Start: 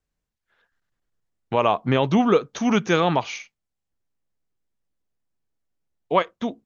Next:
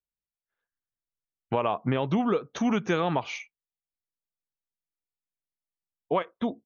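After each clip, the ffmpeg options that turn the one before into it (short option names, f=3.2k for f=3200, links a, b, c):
-af "afftdn=nr=20:nf=-45,lowpass=f=3.5k:p=1,acompressor=threshold=-22dB:ratio=6"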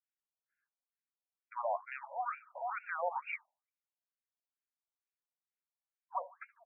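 -filter_complex "[0:a]alimiter=limit=-20dB:level=0:latency=1:release=257,asplit=2[a][b];[b]adelay=74,lowpass=f=4.5k:p=1,volume=-17.5dB,asplit=2[c][d];[d]adelay=74,lowpass=f=4.5k:p=1,volume=0.42,asplit=2[e][f];[f]adelay=74,lowpass=f=4.5k:p=1,volume=0.42[g];[a][c][e][g]amix=inputs=4:normalize=0,afftfilt=real='re*between(b*sr/1024,690*pow(2000/690,0.5+0.5*sin(2*PI*2.2*pts/sr))/1.41,690*pow(2000/690,0.5+0.5*sin(2*PI*2.2*pts/sr))*1.41)':imag='im*between(b*sr/1024,690*pow(2000/690,0.5+0.5*sin(2*PI*2.2*pts/sr))/1.41,690*pow(2000/690,0.5+0.5*sin(2*PI*2.2*pts/sr))*1.41)':win_size=1024:overlap=0.75"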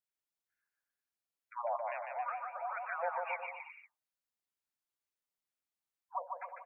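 -af "aecho=1:1:150|270|366|442.8|504.2:0.631|0.398|0.251|0.158|0.1,volume=-1.5dB"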